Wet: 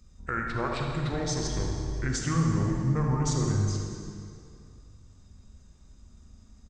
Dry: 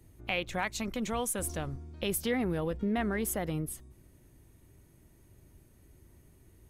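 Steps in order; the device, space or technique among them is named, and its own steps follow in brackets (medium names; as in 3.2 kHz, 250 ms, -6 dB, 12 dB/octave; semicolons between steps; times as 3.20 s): monster voice (pitch shift -7.5 st; formant shift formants -2 st; bass shelf 100 Hz +6 dB; reverberation RT60 2.4 s, pre-delay 30 ms, DRR 1 dB); filtered feedback delay 80 ms, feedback 66%, low-pass 2 kHz, level -6 dB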